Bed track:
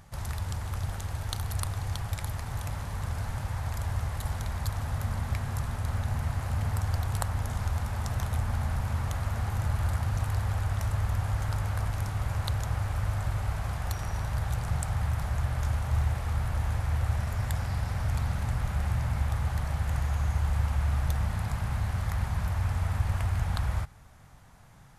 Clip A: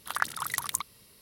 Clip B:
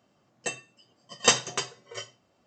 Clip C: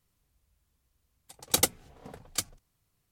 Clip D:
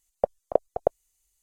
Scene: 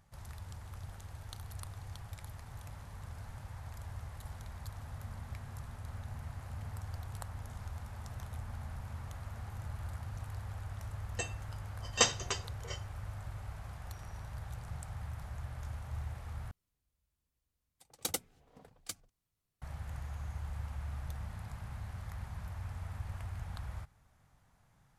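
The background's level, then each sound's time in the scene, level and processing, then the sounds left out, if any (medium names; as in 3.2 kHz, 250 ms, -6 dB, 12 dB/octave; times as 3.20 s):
bed track -13.5 dB
10.73 s: add B -6.5 dB
16.51 s: replace with C -11.5 dB
not used: A, D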